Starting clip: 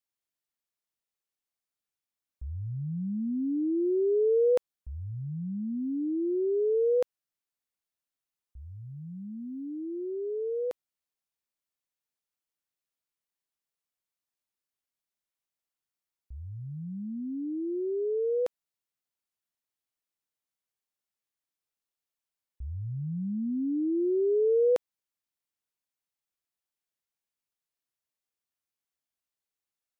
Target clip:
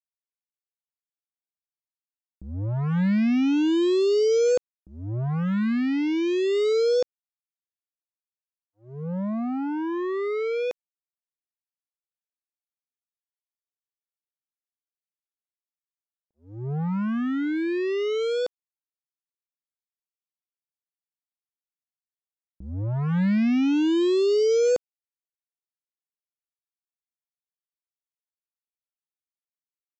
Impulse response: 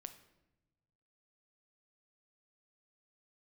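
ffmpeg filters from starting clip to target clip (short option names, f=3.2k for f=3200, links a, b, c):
-af "equalizer=f=190:w=0.75:g=10.5,aresample=16000,acrusher=bits=4:mix=0:aa=0.5,aresample=44100"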